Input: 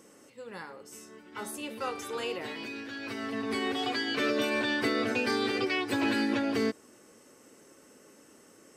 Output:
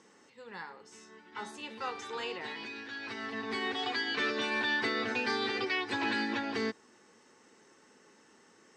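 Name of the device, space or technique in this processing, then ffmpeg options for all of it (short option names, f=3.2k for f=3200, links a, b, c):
car door speaker: -af "highpass=93,equalizer=f=130:t=q:w=4:g=-6,equalizer=f=290:t=q:w=4:g=-6,equalizer=f=580:t=q:w=4:g=-8,equalizer=f=890:t=q:w=4:g=6,equalizer=f=1.8k:t=q:w=4:g=5,equalizer=f=3.8k:t=q:w=4:g=4,lowpass=f=6.9k:w=0.5412,lowpass=f=6.9k:w=1.3066,volume=-3dB"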